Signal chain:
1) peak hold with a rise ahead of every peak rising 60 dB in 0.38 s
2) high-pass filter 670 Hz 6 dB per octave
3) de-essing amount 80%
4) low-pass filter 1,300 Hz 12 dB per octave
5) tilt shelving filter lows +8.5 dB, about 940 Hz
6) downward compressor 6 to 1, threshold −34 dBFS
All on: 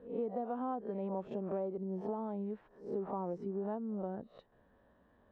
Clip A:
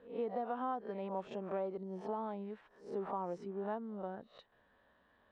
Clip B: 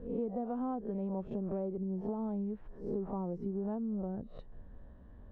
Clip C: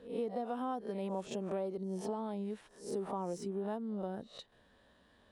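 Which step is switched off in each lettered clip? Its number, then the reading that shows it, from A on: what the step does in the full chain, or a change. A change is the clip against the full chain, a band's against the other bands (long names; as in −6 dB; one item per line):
5, 1 kHz band +6.5 dB
2, 1 kHz band −7.0 dB
4, change in momentary loudness spread +2 LU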